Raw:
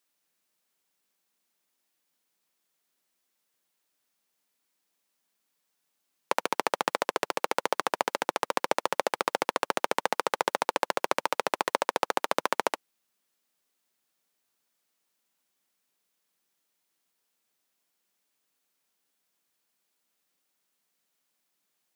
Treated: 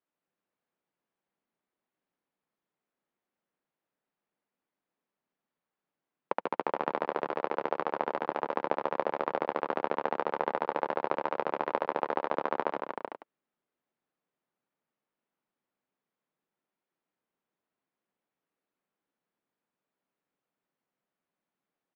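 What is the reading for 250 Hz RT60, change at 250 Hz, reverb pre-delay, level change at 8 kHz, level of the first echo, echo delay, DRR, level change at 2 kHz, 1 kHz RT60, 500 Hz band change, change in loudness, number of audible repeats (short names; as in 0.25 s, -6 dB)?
none, 0.0 dB, none, under -30 dB, -7.5 dB, 0.154 s, none, -7.0 dB, none, -1.0 dB, -3.5 dB, 3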